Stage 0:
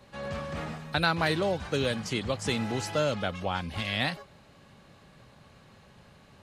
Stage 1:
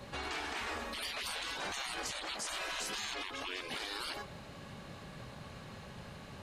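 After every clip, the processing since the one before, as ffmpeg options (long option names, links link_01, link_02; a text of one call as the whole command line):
ffmpeg -i in.wav -af "afftfilt=real='re*lt(hypot(re,im),0.0316)':imag='im*lt(hypot(re,im),0.0316)':win_size=1024:overlap=0.75,alimiter=level_in=11.5dB:limit=-24dB:level=0:latency=1:release=76,volume=-11.5dB,volume=6.5dB" out.wav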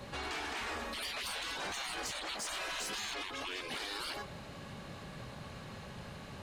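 ffmpeg -i in.wav -af "asoftclip=type=tanh:threshold=-34.5dB,volume=2dB" out.wav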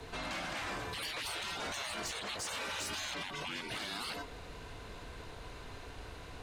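ffmpeg -i in.wav -af "afreqshift=-120" out.wav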